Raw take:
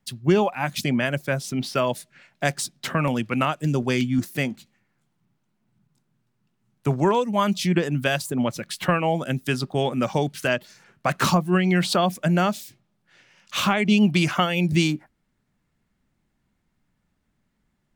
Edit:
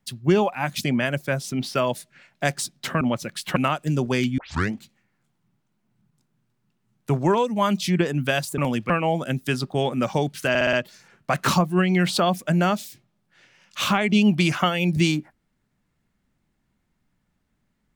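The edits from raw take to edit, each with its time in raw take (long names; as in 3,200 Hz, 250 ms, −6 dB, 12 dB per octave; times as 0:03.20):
0:03.01–0:03.33: swap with 0:08.35–0:08.90
0:04.15: tape start 0.36 s
0:10.49: stutter 0.06 s, 5 plays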